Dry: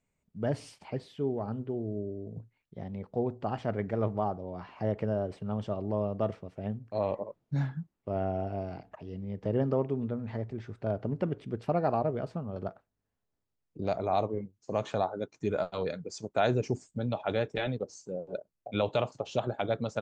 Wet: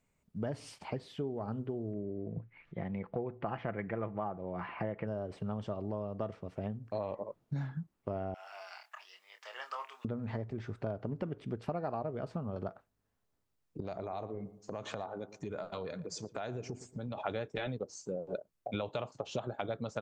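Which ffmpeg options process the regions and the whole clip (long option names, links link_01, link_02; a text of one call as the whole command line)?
ffmpeg -i in.wav -filter_complex "[0:a]asettb=1/sr,asplit=3[link_01][link_02][link_03];[link_01]atrim=end=1.934[link_04];[link_02]atrim=start=1.93:end=5.07,asetpts=PTS-STARTPTS,afade=type=in:duration=0.004:curve=qsin,afade=type=out:start_time=3.136:duration=0.004:curve=qsin,acompressor=mode=upward:threshold=-52dB:ratio=2.5:attack=3.2:release=140:knee=2.83:detection=peak,lowpass=frequency=2200:width_type=q:width=2.3,aecho=1:1:5.9:0.33,atrim=end_sample=138474[link_05];[link_03]atrim=start=5.066[link_06];[link_04][link_05]acrossfade=duration=0.004:curve1=hsin:curve2=qsin[link_07];[link_07][link_06]acrossfade=duration=0.004:curve1=qsin:curve2=hsin,asettb=1/sr,asplit=3[link_08][link_09][link_10];[link_08]atrim=end=8.344[link_11];[link_09]atrim=start=8.34:end=10.05,asetpts=PTS-STARTPTS,afade=type=in:duration=0.004:curve=qsin,afade=type=out:start_time=1.706:duration=0.004:curve=qsin,highpass=frequency=1100:width=0.5412,highpass=frequency=1100:width=1.3066,highshelf=frequency=3900:gain=11.5,asplit=2[link_12][link_13];[link_13]adelay=27,volume=-7dB[link_14];[link_12][link_14]amix=inputs=2:normalize=0,atrim=end_sample=75411[link_15];[link_10]atrim=start=10.046[link_16];[link_11][link_15]acrossfade=duration=0.004:curve1=hsin:curve2=qsin[link_17];[link_17][link_16]acrossfade=duration=0.004:curve1=qsin:curve2=hsin,asettb=1/sr,asplit=3[link_18][link_19][link_20];[link_18]atrim=end=13.804[link_21];[link_19]atrim=start=13.8:end=17.18,asetpts=PTS-STARTPTS,afade=type=in:duration=0.004:curve=qsin,afade=type=out:start_time=3.376:duration=0.004:curve=qsin,acompressor=threshold=-41dB:ratio=4:attack=3.2:release=140:knee=1:detection=peak,asplit=2[link_22][link_23];[link_23]adelay=115,lowpass=frequency=1700:poles=1,volume=-14.5dB,asplit=2[link_24][link_25];[link_25]adelay=115,lowpass=frequency=1700:poles=1,volume=0.4,asplit=2[link_26][link_27];[link_27]adelay=115,lowpass=frequency=1700:poles=1,volume=0.4,asplit=2[link_28][link_29];[link_29]adelay=115,lowpass=frequency=1700:poles=1,volume=0.4[link_30];[link_22][link_24][link_26][link_28][link_30]amix=inputs=5:normalize=0,atrim=end_sample=149058[link_31];[link_20]atrim=start=17.176[link_32];[link_21][link_31]acrossfade=duration=0.004:curve1=hsin:curve2=qsin[link_33];[link_33][link_32]acrossfade=duration=0.004:curve1=qsin:curve2=hsin,acompressor=threshold=-37dB:ratio=6,equalizer=frequency=1200:width_type=o:width=0.77:gain=2.5,volume=3dB" out.wav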